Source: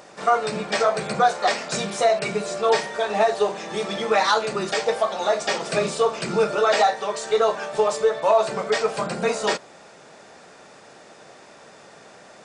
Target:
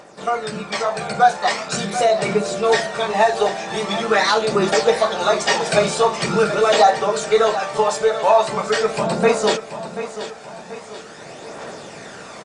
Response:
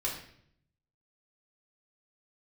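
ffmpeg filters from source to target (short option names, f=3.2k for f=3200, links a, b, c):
-af "aphaser=in_gain=1:out_gain=1:delay=1.4:decay=0.42:speed=0.43:type=triangular,dynaudnorm=f=730:g=3:m=11.5dB,aecho=1:1:734|1468|2202|2936|3670:0.251|0.113|0.0509|0.0229|0.0103,volume=-1dB"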